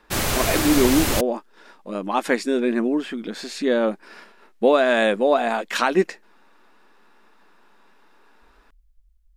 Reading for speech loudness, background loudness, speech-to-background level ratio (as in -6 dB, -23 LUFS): -21.5 LUFS, -22.5 LUFS, 1.0 dB